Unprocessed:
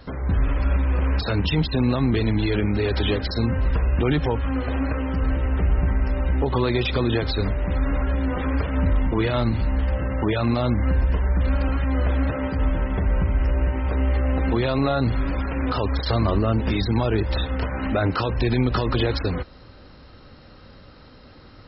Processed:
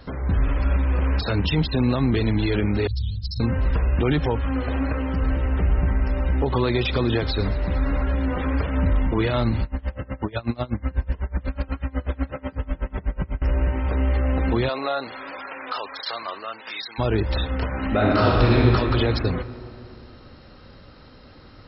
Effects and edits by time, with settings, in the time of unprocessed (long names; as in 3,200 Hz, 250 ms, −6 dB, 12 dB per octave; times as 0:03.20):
0:02.87–0:03.40: elliptic band-stop filter 140–4,700 Hz
0:04.47–0:08.63: delay with a high-pass on its return 114 ms, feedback 70%, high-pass 4,900 Hz, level −13.5 dB
0:09.63–0:13.42: tremolo with a sine in dB 8.1 Hz, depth 26 dB
0:14.68–0:16.98: high-pass filter 480 Hz → 1,400 Hz
0:17.87–0:18.58: thrown reverb, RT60 2.9 s, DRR −4 dB